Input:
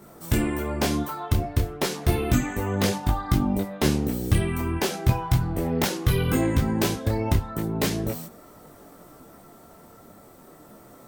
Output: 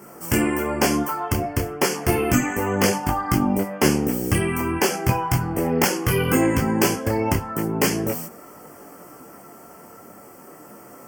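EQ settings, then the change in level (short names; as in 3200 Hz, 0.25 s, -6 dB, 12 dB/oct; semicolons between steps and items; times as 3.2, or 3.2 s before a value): HPF 260 Hz 6 dB/oct; Butterworth band-stop 3800 Hz, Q 2.4; notch 640 Hz, Q 12; +7.0 dB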